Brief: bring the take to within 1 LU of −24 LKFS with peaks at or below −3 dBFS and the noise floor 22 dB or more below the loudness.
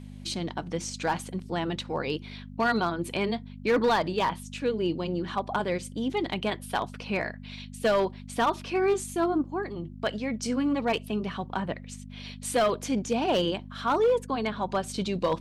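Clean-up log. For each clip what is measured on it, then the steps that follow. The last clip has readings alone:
share of clipped samples 0.7%; peaks flattened at −18.0 dBFS; mains hum 50 Hz; hum harmonics up to 250 Hz; level of the hum −41 dBFS; integrated loudness −29.0 LKFS; sample peak −18.0 dBFS; target loudness −24.0 LKFS
→ clipped peaks rebuilt −18 dBFS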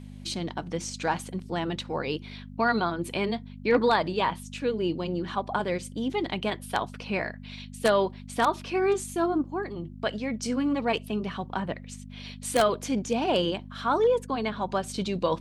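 share of clipped samples 0.0%; mains hum 50 Hz; hum harmonics up to 250 Hz; level of the hum −41 dBFS
→ hum removal 50 Hz, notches 5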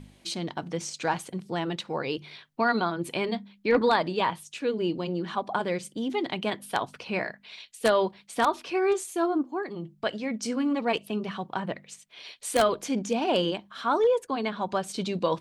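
mains hum none found; integrated loudness −28.5 LKFS; sample peak −8.5 dBFS; target loudness −24.0 LKFS
→ level +4.5 dB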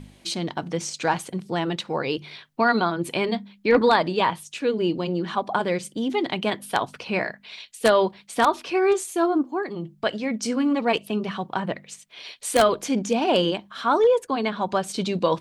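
integrated loudness −24.0 LKFS; sample peak −4.0 dBFS; background noise floor −55 dBFS

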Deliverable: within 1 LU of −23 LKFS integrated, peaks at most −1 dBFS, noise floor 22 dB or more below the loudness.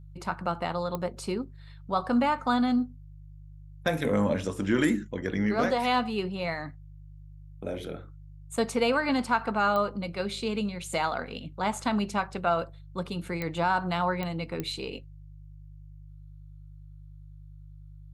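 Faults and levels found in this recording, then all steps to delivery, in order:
number of clicks 5; mains hum 50 Hz; hum harmonics up to 150 Hz; level of the hum −44 dBFS; integrated loudness −29.0 LKFS; sample peak −12.0 dBFS; target loudness −23.0 LKFS
→ click removal
hum removal 50 Hz, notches 3
level +6 dB

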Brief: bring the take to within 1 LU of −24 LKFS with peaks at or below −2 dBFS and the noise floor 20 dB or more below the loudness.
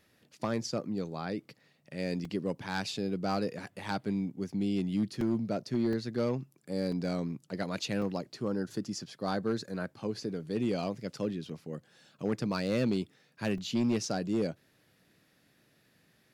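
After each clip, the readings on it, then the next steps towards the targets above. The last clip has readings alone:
share of clipped samples 0.6%; peaks flattened at −22.5 dBFS; number of dropouts 6; longest dropout 2.7 ms; integrated loudness −34.0 LKFS; sample peak −22.5 dBFS; target loudness −24.0 LKFS
→ clipped peaks rebuilt −22.5 dBFS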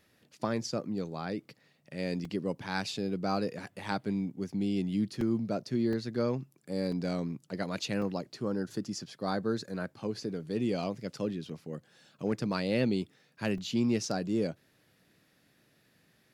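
share of clipped samples 0.0%; number of dropouts 6; longest dropout 2.7 ms
→ repair the gap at 0:02.25/0:05.21/0:05.93/0:06.92/0:08.02/0:13.58, 2.7 ms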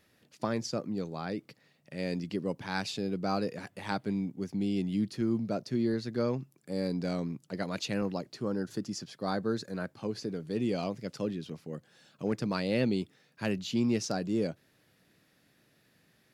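number of dropouts 0; integrated loudness −33.5 LKFS; sample peak −15.5 dBFS; target loudness −24.0 LKFS
→ level +9.5 dB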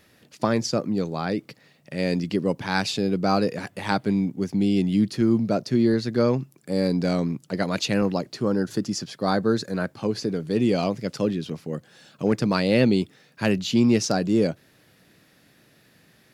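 integrated loudness −24.0 LKFS; sample peak −6.0 dBFS; background noise floor −59 dBFS

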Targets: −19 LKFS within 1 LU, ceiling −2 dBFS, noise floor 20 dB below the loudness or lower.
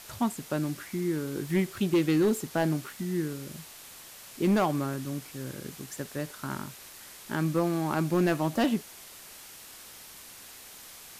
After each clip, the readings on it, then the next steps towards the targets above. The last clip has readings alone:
share of clipped samples 0.6%; peaks flattened at −18.5 dBFS; background noise floor −48 dBFS; target noise floor −50 dBFS; integrated loudness −29.5 LKFS; sample peak −18.5 dBFS; target loudness −19.0 LKFS
→ clipped peaks rebuilt −18.5 dBFS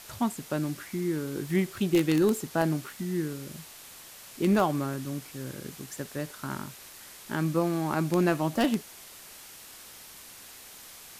share of clipped samples 0.0%; background noise floor −48 dBFS; target noise floor −49 dBFS
→ noise reduction from a noise print 6 dB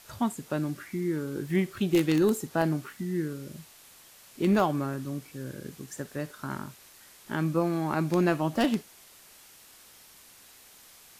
background noise floor −54 dBFS; integrated loudness −29.0 LKFS; sample peak −9.5 dBFS; target loudness −19.0 LKFS
→ level +10 dB
brickwall limiter −2 dBFS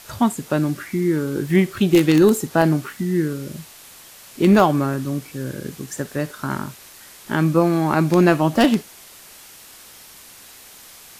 integrated loudness −19.5 LKFS; sample peak −2.0 dBFS; background noise floor −44 dBFS

